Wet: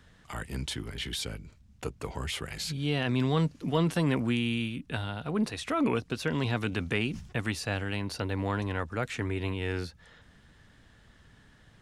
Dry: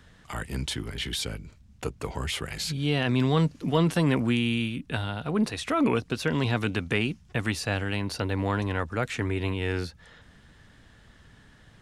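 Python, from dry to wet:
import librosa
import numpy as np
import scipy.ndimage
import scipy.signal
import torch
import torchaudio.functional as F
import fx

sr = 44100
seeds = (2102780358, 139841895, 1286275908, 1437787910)

y = fx.sustainer(x, sr, db_per_s=95.0, at=(6.71, 7.39), fade=0.02)
y = y * librosa.db_to_amplitude(-3.5)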